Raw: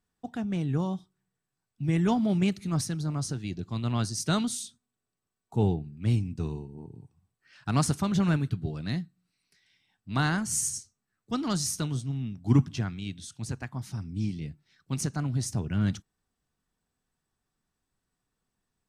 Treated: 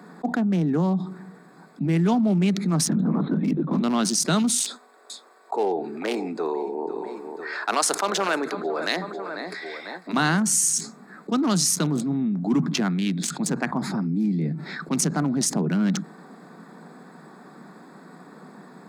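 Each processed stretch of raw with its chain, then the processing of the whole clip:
2.89–3.81 s: bass shelf 160 Hz +7.5 dB + LPC vocoder at 8 kHz whisper
4.60–10.13 s: high-pass 440 Hz 24 dB/octave + feedback delay 497 ms, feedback 35%, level -22 dB
whole clip: local Wiener filter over 15 samples; steep high-pass 160 Hz 72 dB/octave; level flattener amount 70%; trim +2 dB

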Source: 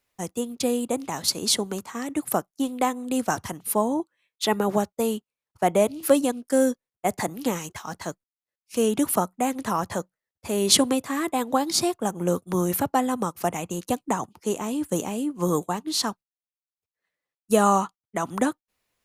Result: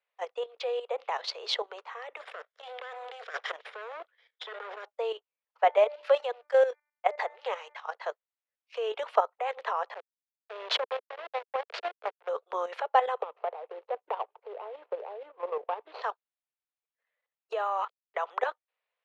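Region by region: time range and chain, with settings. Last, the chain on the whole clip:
2.16–4.85 s: comb filter that takes the minimum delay 0.56 ms + treble shelf 3.2 kHz +6 dB + compressor with a negative ratio -31 dBFS
5.64–7.82 s: companding laws mixed up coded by A + tone controls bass -13 dB, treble +1 dB + de-hum 296.6 Hz, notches 8
9.94–12.29 s: band-stop 480 Hz, Q 15 + hysteresis with a dead band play -15 dBFS
13.22–16.02 s: median filter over 25 samples + tilt EQ -2.5 dB/octave + compression 4:1, threshold -22 dBFS
17.52–18.25 s: high-pass 200 Hz + compression 12:1, threshold -23 dBFS + small samples zeroed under -54 dBFS
whole clip: steep high-pass 450 Hz 72 dB/octave; level held to a coarse grid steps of 11 dB; low-pass 3.4 kHz 24 dB/octave; trim +3.5 dB

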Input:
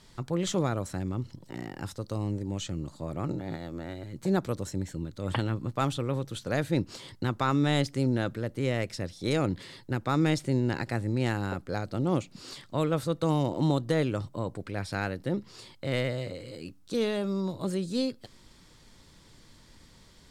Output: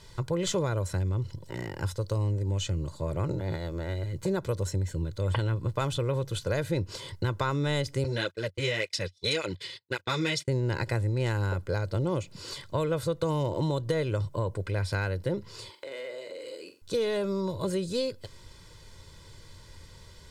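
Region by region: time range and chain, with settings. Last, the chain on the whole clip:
8.04–10.48 s: frequency weighting D + gate -38 dBFS, range -35 dB + cancelling through-zero flanger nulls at 1.8 Hz, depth 5.1 ms
15.69–16.82 s: high-pass 290 Hz 24 dB/octave + compression 4:1, threshold -43 dBFS + flutter echo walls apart 7.5 m, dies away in 0.32 s
whole clip: peaking EQ 92 Hz +7 dB 0.48 oct; comb 2 ms, depth 62%; compression, threshold -27 dBFS; trim +2.5 dB

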